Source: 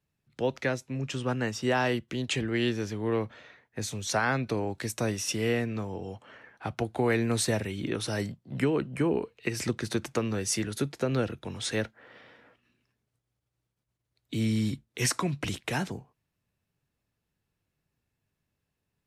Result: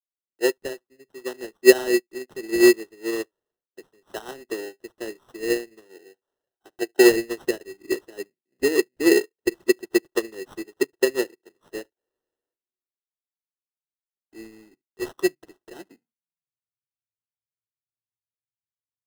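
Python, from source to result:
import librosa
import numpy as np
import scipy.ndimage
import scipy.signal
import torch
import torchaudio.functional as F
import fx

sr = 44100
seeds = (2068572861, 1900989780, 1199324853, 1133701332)

y = fx.room_early_taps(x, sr, ms=(36, 71), db=(-16.0, -17.5))
y = fx.filter_sweep_highpass(y, sr, from_hz=370.0, to_hz=110.0, start_s=15.75, end_s=16.61, q=6.9)
y = fx.sample_hold(y, sr, seeds[0], rate_hz=2300.0, jitter_pct=0)
y = fx.upward_expand(y, sr, threshold_db=-39.0, expansion=2.5)
y = F.gain(torch.from_numpy(y), 5.0).numpy()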